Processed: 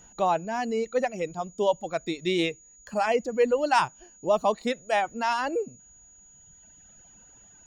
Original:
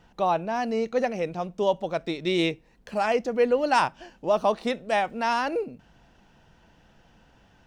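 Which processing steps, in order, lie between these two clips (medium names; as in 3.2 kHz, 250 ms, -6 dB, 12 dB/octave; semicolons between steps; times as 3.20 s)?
reverb removal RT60 2 s; whistle 6.8 kHz -52 dBFS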